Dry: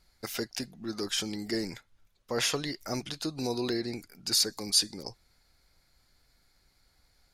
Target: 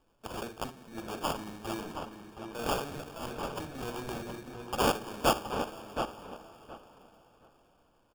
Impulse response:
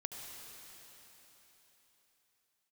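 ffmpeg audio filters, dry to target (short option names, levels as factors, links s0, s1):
-filter_complex "[0:a]tiltshelf=f=1400:g=-4.5,bandreject=f=50:t=h:w=6,bandreject=f=100:t=h:w=6,bandreject=f=150:t=h:w=6,bandreject=f=200:t=h:w=6,bandreject=f=250:t=h:w=6,bandreject=f=300:t=h:w=6,bandreject=f=350:t=h:w=6,bandreject=f=400:t=h:w=6,bandreject=f=450:t=h:w=6,bandreject=f=500:t=h:w=6,asplit=2[s0][s1];[1:a]atrim=start_sample=2205,highshelf=f=2500:g=-10,adelay=56[s2];[s1][s2]afir=irnorm=-1:irlink=0,volume=0.668[s3];[s0][s3]amix=inputs=2:normalize=0,acrusher=samples=22:mix=1:aa=0.000001,atempo=0.9,asplit=2[s4][s5];[s5]adelay=721,lowpass=f=2600:p=1,volume=0.473,asplit=2[s6][s7];[s7]adelay=721,lowpass=f=2600:p=1,volume=0.19,asplit=2[s8][s9];[s9]adelay=721,lowpass=f=2600:p=1,volume=0.19[s10];[s4][s6][s8][s10]amix=inputs=4:normalize=0,volume=0.596"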